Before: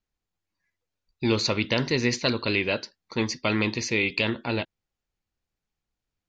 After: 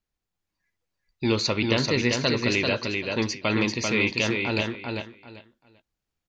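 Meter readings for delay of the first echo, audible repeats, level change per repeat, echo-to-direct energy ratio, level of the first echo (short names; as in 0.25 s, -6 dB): 0.391 s, 3, -13.5 dB, -4.0 dB, -4.0 dB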